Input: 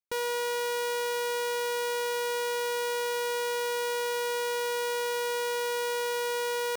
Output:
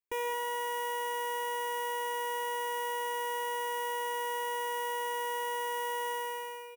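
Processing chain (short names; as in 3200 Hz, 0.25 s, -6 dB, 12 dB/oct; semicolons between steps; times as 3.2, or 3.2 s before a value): ending faded out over 0.66 s; bell 9500 Hz -3.5 dB 2 oct; fixed phaser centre 890 Hz, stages 8; speakerphone echo 0.23 s, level -17 dB; non-linear reverb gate 0.24 s rising, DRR 8 dB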